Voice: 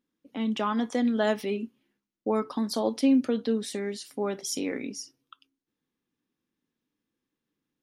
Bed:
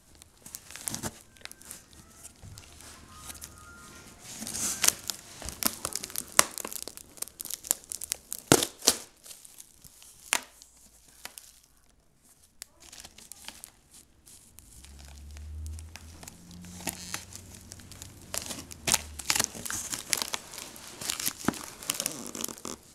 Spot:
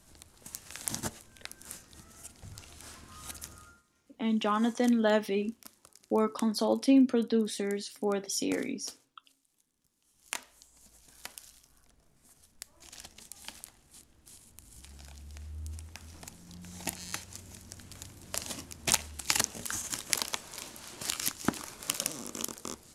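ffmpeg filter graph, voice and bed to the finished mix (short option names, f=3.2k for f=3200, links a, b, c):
-filter_complex "[0:a]adelay=3850,volume=-0.5dB[a];[1:a]volume=21.5dB,afade=t=out:st=3.54:d=0.29:silence=0.0707946,afade=t=in:st=10.02:d=0.94:silence=0.0794328[b];[a][b]amix=inputs=2:normalize=0"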